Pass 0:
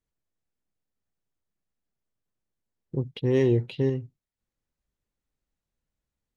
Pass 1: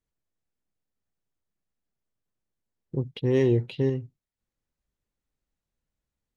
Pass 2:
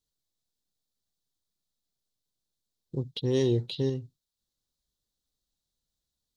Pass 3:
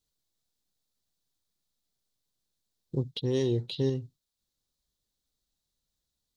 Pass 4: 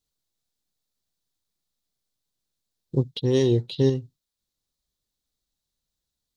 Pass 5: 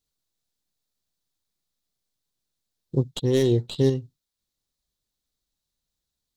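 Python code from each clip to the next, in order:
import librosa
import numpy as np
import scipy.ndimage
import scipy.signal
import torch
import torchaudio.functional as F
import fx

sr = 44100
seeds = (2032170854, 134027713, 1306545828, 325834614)

y1 = x
y2 = fx.high_shelf_res(y1, sr, hz=3000.0, db=8.5, q=3.0)
y2 = y2 * 10.0 ** (-3.5 / 20.0)
y3 = fx.rider(y2, sr, range_db=10, speed_s=0.5)
y4 = fx.upward_expand(y3, sr, threshold_db=-41.0, expansion=1.5)
y4 = y4 * 10.0 ** (8.0 / 20.0)
y5 = fx.tracing_dist(y4, sr, depth_ms=0.061)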